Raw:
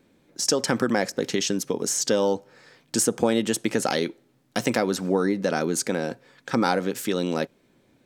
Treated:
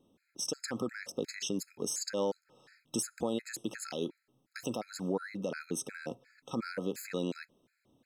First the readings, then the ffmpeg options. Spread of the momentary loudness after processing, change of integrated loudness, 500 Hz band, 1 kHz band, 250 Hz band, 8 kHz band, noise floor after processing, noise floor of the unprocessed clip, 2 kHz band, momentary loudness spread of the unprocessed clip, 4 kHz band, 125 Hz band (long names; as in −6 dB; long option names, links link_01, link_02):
9 LU, −12.5 dB, −12.5 dB, −15.5 dB, −12.0 dB, −11.5 dB, −80 dBFS, −63 dBFS, −13.0 dB, 7 LU, −12.0 dB, −11.5 dB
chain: -af "alimiter=limit=-14.5dB:level=0:latency=1:release=86,afftfilt=real='re*gt(sin(2*PI*2.8*pts/sr)*(1-2*mod(floor(b*sr/1024/1300),2)),0)':imag='im*gt(sin(2*PI*2.8*pts/sr)*(1-2*mod(floor(b*sr/1024/1300),2)),0)':win_size=1024:overlap=0.75,volume=-7dB"